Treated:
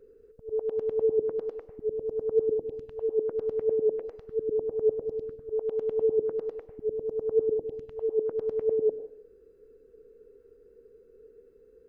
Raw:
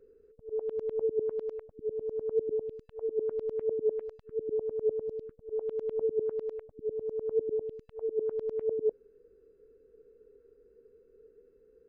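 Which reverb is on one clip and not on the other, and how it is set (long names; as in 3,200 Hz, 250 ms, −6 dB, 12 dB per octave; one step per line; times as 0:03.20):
dense smooth reverb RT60 0.55 s, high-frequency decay 0.95×, pre-delay 85 ms, DRR 11 dB
level +4 dB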